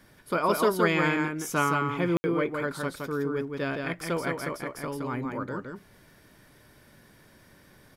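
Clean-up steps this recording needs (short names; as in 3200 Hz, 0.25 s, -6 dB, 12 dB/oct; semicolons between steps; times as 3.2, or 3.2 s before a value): room tone fill 2.17–2.24; inverse comb 0.167 s -4 dB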